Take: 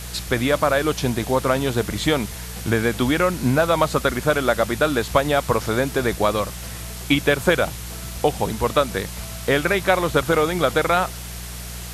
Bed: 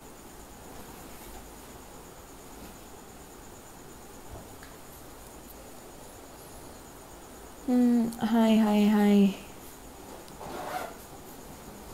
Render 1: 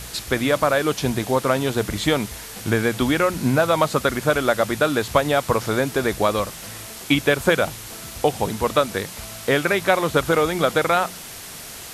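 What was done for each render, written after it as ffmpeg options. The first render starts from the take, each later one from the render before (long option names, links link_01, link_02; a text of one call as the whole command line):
ffmpeg -i in.wav -af "bandreject=frequency=60:width_type=h:width=4,bandreject=frequency=120:width_type=h:width=4,bandreject=frequency=180:width_type=h:width=4" out.wav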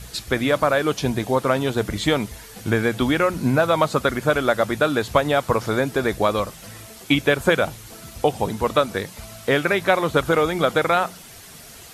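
ffmpeg -i in.wav -af "afftdn=noise_reduction=8:noise_floor=-37" out.wav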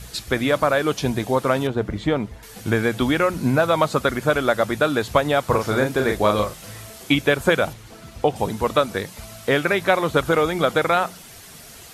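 ffmpeg -i in.wav -filter_complex "[0:a]asettb=1/sr,asplit=3[link_01][link_02][link_03];[link_01]atrim=end=1.674[link_04];[link_02]atrim=start=1.67:end=2.43,asetpts=PTS-STARTPTS,afade=type=in:duration=0.004:curve=qsin,afade=type=out:start_time=0.756:duration=0.004:curve=qsin,lowpass=frequency=1200:poles=1[link_05];[link_03]atrim=start=2.426[link_06];[link_04][link_05]acrossfade=duration=0.004:curve1=hsin:curve2=qsin[link_07];[link_07][link_06]acrossfade=duration=0.004:curve1=qsin:curve2=hsin,asettb=1/sr,asplit=3[link_08][link_09][link_10];[link_08]atrim=end=5.464[link_11];[link_09]atrim=start=5.46:end=7.11,asetpts=PTS-STARTPTS,afade=type=in:duration=0.004:curve=qsin,afade=type=out:start_time=1.646:duration=0.004:curve=qsin,asplit=2[link_12][link_13];[link_13]adelay=38,volume=-4.5dB[link_14];[link_12][link_14]amix=inputs=2:normalize=0,atrim=end_sample=72765[link_15];[link_10]atrim=start=7.106[link_16];[link_11][link_15]acrossfade=duration=0.004:curve1=hsin:curve2=qsin[link_17];[link_17][link_16]acrossfade=duration=0.004:curve1=qsin:curve2=hsin,asettb=1/sr,asplit=3[link_18][link_19][link_20];[link_18]atrim=end=7.734[link_21];[link_19]atrim=start=7.73:end=8.36,asetpts=PTS-STARTPTS,afade=type=in:duration=0.004:curve=qsin,afade=type=out:start_time=0.626:duration=0.004:curve=qsin,lowpass=frequency=3300:poles=1[link_22];[link_20]atrim=start=8.356[link_23];[link_21][link_22]acrossfade=duration=0.004:curve1=hsin:curve2=qsin[link_24];[link_24][link_23]acrossfade=duration=0.004:curve1=qsin:curve2=hsin" out.wav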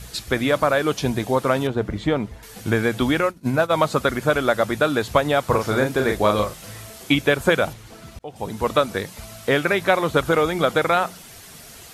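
ffmpeg -i in.wav -filter_complex "[0:a]asplit=3[link_01][link_02][link_03];[link_01]afade=type=out:start_time=3.2:duration=0.02[link_04];[link_02]agate=range=-33dB:threshold=-16dB:ratio=3:release=100:detection=peak,afade=type=in:start_time=3.2:duration=0.02,afade=type=out:start_time=3.71:duration=0.02[link_05];[link_03]afade=type=in:start_time=3.71:duration=0.02[link_06];[link_04][link_05][link_06]amix=inputs=3:normalize=0,asplit=2[link_07][link_08];[link_07]atrim=end=8.19,asetpts=PTS-STARTPTS,afade=type=out:start_time=8.186:duration=0.004:curve=hsin[link_09];[link_08]atrim=start=8.19,asetpts=PTS-STARTPTS,afade=type=in:duration=0.49[link_10];[link_09][link_10]concat=n=2:v=0:a=1" out.wav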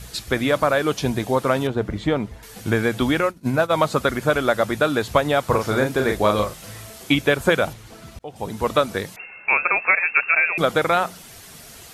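ffmpeg -i in.wav -filter_complex "[0:a]asettb=1/sr,asplit=3[link_01][link_02][link_03];[link_01]atrim=end=9.164[link_04];[link_02]atrim=start=9.16:end=10.58,asetpts=PTS-STARTPTS,afade=type=in:duration=0.004:curve=qsin,afade=type=out:start_time=1.416:duration=0.004:curve=qsin,lowpass=frequency=2400:width_type=q:width=0.5098,lowpass=frequency=2400:width_type=q:width=0.6013,lowpass=frequency=2400:width_type=q:width=0.9,lowpass=frequency=2400:width_type=q:width=2.563,afreqshift=-2800[link_05];[link_03]atrim=start=10.576[link_06];[link_04][link_05]acrossfade=duration=0.004:curve1=hsin:curve2=qsin[link_07];[link_07][link_06]acrossfade=duration=0.004:curve1=qsin:curve2=hsin" out.wav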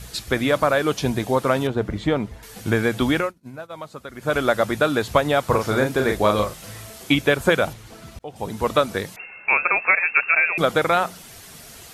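ffmpeg -i in.wav -filter_complex "[0:a]asplit=3[link_01][link_02][link_03];[link_01]atrim=end=3.47,asetpts=PTS-STARTPTS,afade=type=out:start_time=3.18:duration=0.29:curve=qua:silence=0.149624[link_04];[link_02]atrim=start=3.47:end=4.07,asetpts=PTS-STARTPTS,volume=-16.5dB[link_05];[link_03]atrim=start=4.07,asetpts=PTS-STARTPTS,afade=type=in:duration=0.29:curve=qua:silence=0.149624[link_06];[link_04][link_05][link_06]concat=n=3:v=0:a=1" out.wav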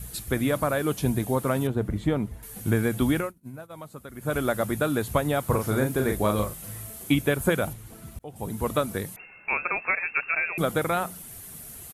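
ffmpeg -i in.wav -af "firequalizer=gain_entry='entry(130,0);entry(520,-7);entry(5100,-11);entry(10000,5)':delay=0.05:min_phase=1" out.wav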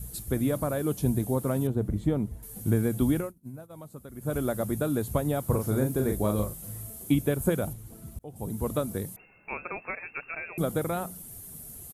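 ffmpeg -i in.wav -af "equalizer=frequency=2100:width=0.43:gain=-11.5" out.wav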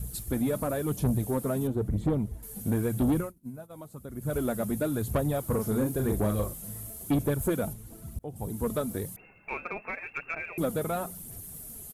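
ffmpeg -i in.wav -af "aphaser=in_gain=1:out_gain=1:delay=4.8:decay=0.38:speed=0.97:type=sinusoidal,asoftclip=type=tanh:threshold=-20dB" out.wav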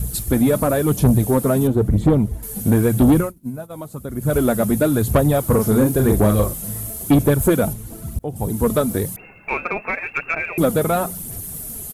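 ffmpeg -i in.wav -af "volume=12dB" out.wav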